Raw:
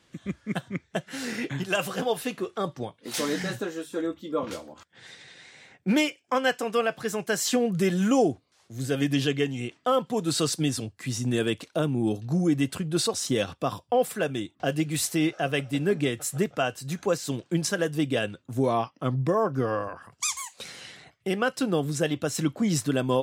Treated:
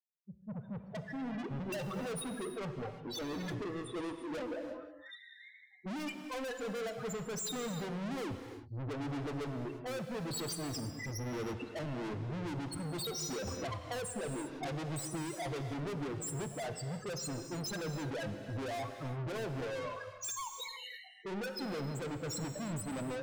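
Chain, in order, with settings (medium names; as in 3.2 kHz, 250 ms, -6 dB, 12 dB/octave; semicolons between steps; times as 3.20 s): fade-in on the opening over 1.08 s; spectral noise reduction 21 dB; expander -44 dBFS; loudest bins only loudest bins 4; level rider gain up to 14 dB; peaking EQ 9.9 kHz +12.5 dB 1.7 oct; level-controlled noise filter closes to 2.7 kHz, open at -10 dBFS; saturation -31.5 dBFS, distortion -2 dB; gated-style reverb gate 370 ms flat, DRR 6.5 dB; 13.47–15.74 s: three bands compressed up and down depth 70%; trim -7 dB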